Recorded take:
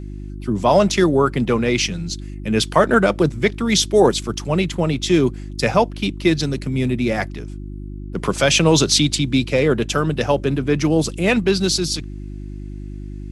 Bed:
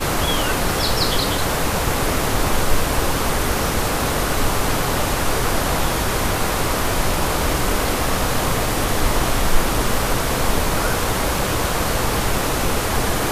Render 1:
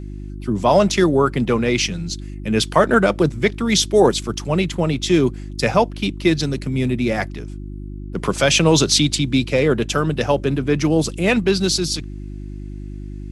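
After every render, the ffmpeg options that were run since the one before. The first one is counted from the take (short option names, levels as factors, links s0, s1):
-af anull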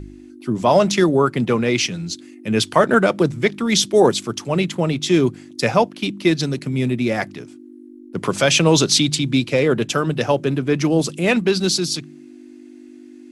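-af "bandreject=f=50:t=h:w=4,bandreject=f=100:t=h:w=4,bandreject=f=150:t=h:w=4,bandreject=f=200:t=h:w=4"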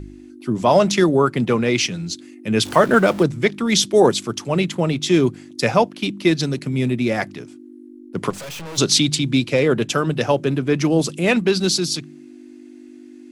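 -filter_complex "[0:a]asettb=1/sr,asplit=3[s0][s1][s2];[s0]atrim=end=2.654[s3];[s1]atrim=start=2.65:end=3.23,asetpts=PTS-STARTPTS,afade=t=in:d=0.004:c=qsin,afade=t=out:st=0.576:d=0.004:c=qsin,aeval=exprs='val(0)+0.5*0.0335*sgn(val(0))':c=same[s4];[s2]atrim=start=3.226[s5];[s3][s4]acrossfade=d=0.004:c1=hsin:c2=qsin[s6];[s6][s5]acrossfade=d=0.004:c1=qsin:c2=hsin,asplit=3[s7][s8][s9];[s7]afade=t=out:st=8.29:d=0.02[s10];[s8]aeval=exprs='(tanh(39.8*val(0)+0.3)-tanh(0.3))/39.8':c=same,afade=t=in:st=8.29:d=0.02,afade=t=out:st=8.77:d=0.02[s11];[s9]afade=t=in:st=8.77:d=0.02[s12];[s10][s11][s12]amix=inputs=3:normalize=0"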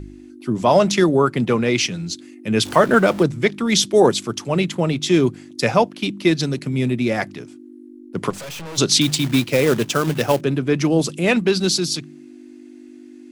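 -filter_complex "[0:a]asettb=1/sr,asplit=3[s0][s1][s2];[s0]atrim=end=9.014[s3];[s1]atrim=start=9.01:end=10.41,asetpts=PTS-STARTPTS,afade=t=in:d=0.004:c=qsin,afade=t=out:st=1.396:d=0.004:c=qsin,acrusher=bits=3:mode=log:mix=0:aa=0.000001[s4];[s2]atrim=start=10.406[s5];[s3][s4]acrossfade=d=0.004:c1=hsin:c2=qsin[s6];[s6][s5]acrossfade=d=0.004:c1=qsin:c2=hsin"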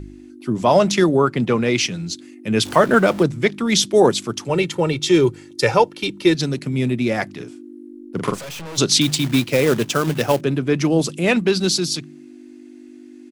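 -filter_complex "[0:a]asettb=1/sr,asplit=3[s0][s1][s2];[s0]atrim=end=1.174[s3];[s1]atrim=start=1.17:end=1.57,asetpts=PTS-STARTPTS,afade=t=in:d=0.004:c=qsin,afade=t=out:st=0.396:d=0.004:c=qsin,acrossover=split=7100[s4][s5];[s5]acompressor=threshold=0.00126:ratio=4:attack=1:release=60[s6];[s4][s6]amix=inputs=2:normalize=0[s7];[s2]atrim=start=1.566[s8];[s3][s7]acrossfade=d=0.004:c1=hsin:c2=qsin[s9];[s9][s8]acrossfade=d=0.004:c1=qsin:c2=hsin,asettb=1/sr,asplit=3[s10][s11][s12];[s10]atrim=end=4.494[s13];[s11]atrim=start=4.49:end=6.35,asetpts=PTS-STARTPTS,afade=t=in:d=0.004:c=qsin,afade=t=out:st=1.856:d=0.004:c=qsin,aecho=1:1:2.2:0.65,atrim=end_sample=82026[s14];[s12]atrim=start=6.346[s15];[s13][s14]acrossfade=d=0.004:c1=hsin:c2=qsin[s16];[s16][s15]acrossfade=d=0.004:c1=qsin:c2=hsin,asplit=3[s17][s18][s19];[s17]afade=t=out:st=7.39:d=0.02[s20];[s18]asplit=2[s21][s22];[s22]adelay=43,volume=0.562[s23];[s21][s23]amix=inputs=2:normalize=0,afade=t=in:st=7.39:d=0.02,afade=t=out:st=8.38:d=0.02[s24];[s19]afade=t=in:st=8.38:d=0.02[s25];[s20][s24][s25]amix=inputs=3:normalize=0"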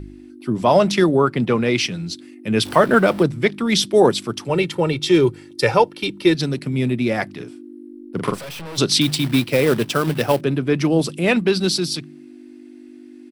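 -af "equalizer=f=6700:t=o:w=0.3:g=-9.5"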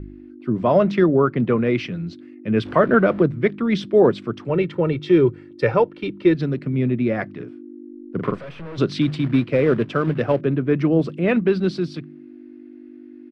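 -af "lowpass=1700,equalizer=f=850:w=3:g=-8"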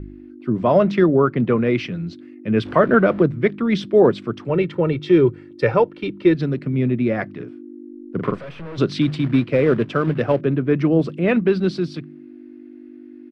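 -af "volume=1.12"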